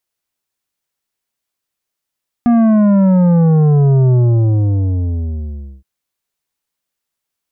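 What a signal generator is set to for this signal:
bass drop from 240 Hz, over 3.37 s, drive 9.5 dB, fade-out 1.71 s, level −8.5 dB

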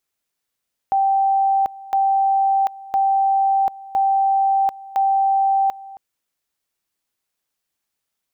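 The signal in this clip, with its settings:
tone at two levels in turn 781 Hz −14 dBFS, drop 20 dB, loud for 0.74 s, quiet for 0.27 s, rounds 5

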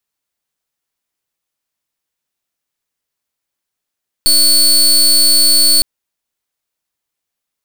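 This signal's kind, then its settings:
pulse wave 4,440 Hz, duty 27% −9 dBFS 1.56 s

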